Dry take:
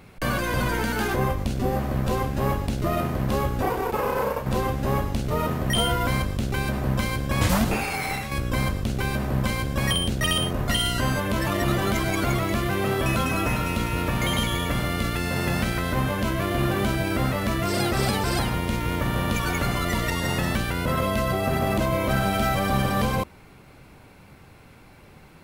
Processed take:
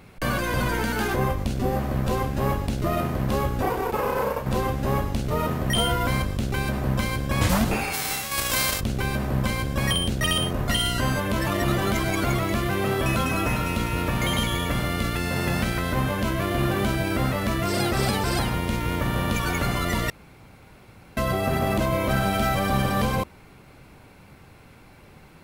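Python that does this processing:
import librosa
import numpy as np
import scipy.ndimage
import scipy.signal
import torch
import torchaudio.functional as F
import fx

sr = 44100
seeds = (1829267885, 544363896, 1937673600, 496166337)

y = fx.envelope_flatten(x, sr, power=0.3, at=(7.92, 8.79), fade=0.02)
y = fx.edit(y, sr, fx.room_tone_fill(start_s=20.1, length_s=1.07), tone=tone)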